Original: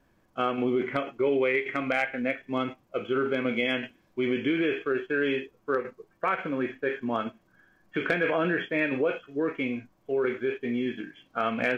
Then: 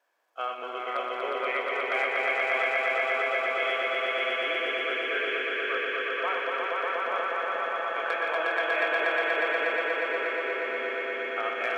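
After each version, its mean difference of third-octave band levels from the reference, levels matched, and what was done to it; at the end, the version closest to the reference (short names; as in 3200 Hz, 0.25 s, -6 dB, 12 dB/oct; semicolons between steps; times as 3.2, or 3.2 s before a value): 12.0 dB: regenerating reverse delay 0.117 s, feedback 83%, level -8 dB; HPF 540 Hz 24 dB/oct; on a send: swelling echo 0.12 s, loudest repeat 5, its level -3 dB; on the sum: gain -4 dB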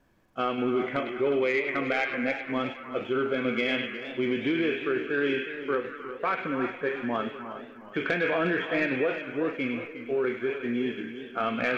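4.0 dB: soft clip -15.5 dBFS, distortion -23 dB; on a send: delay with a stepping band-pass 0.101 s, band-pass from 3000 Hz, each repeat -0.7 oct, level -4.5 dB; on the sum: warbling echo 0.361 s, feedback 40%, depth 92 cents, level -12 dB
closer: second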